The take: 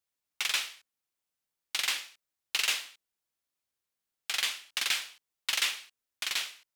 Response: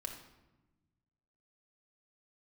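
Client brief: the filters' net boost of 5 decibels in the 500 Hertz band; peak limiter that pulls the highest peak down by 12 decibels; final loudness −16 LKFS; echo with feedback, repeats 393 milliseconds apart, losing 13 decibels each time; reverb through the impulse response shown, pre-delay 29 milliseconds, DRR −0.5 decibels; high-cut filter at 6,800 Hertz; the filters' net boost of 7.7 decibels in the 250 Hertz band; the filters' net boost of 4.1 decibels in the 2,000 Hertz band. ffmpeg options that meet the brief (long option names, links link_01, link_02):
-filter_complex "[0:a]lowpass=6800,equalizer=frequency=250:width_type=o:gain=8.5,equalizer=frequency=500:width_type=o:gain=4,equalizer=frequency=2000:width_type=o:gain=5,alimiter=limit=-23dB:level=0:latency=1,aecho=1:1:393|786|1179:0.224|0.0493|0.0108,asplit=2[link_01][link_02];[1:a]atrim=start_sample=2205,adelay=29[link_03];[link_02][link_03]afir=irnorm=-1:irlink=0,volume=2dB[link_04];[link_01][link_04]amix=inputs=2:normalize=0,volume=16.5dB"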